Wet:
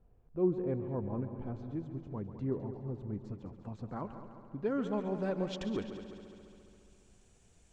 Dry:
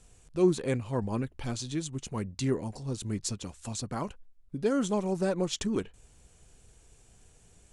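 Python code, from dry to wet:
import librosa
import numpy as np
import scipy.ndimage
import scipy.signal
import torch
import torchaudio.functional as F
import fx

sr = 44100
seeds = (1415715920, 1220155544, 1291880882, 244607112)

y = fx.filter_sweep_lowpass(x, sr, from_hz=870.0, to_hz=7500.0, start_s=3.16, end_s=7.11, q=0.79)
y = fx.echo_heads(y, sr, ms=69, heads='second and third', feedback_pct=64, wet_db=-12.0)
y = y * librosa.db_to_amplitude(-6.0)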